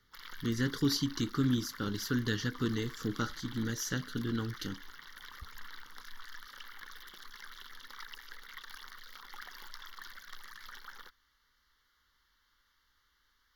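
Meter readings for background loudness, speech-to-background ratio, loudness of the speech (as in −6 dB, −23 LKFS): −49.0 LKFS, 14.5 dB, −34.5 LKFS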